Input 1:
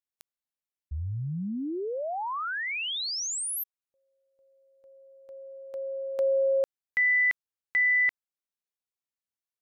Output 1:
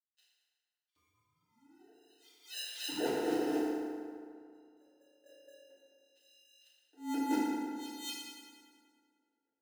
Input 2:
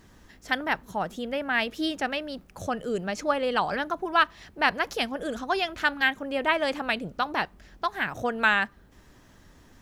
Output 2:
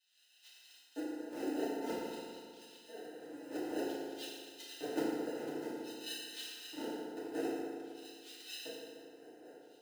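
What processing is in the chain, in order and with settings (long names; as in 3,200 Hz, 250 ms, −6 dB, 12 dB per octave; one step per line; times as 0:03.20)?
every bin's largest magnitude spread in time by 60 ms
mains-hum notches 50/100/150 Hz
auto-filter band-pass saw up 4.2 Hz 490–2,400 Hz
parametric band 510 Hz −11 dB 1.2 octaves
volume swells 776 ms
first-order pre-emphasis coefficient 0.8
decimation without filtering 39×
auto-filter high-pass square 0.52 Hz 350–3,400 Hz
feedback delay network reverb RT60 2.2 s, low-frequency decay 1×, high-frequency decay 0.6×, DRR −10 dB
level +5.5 dB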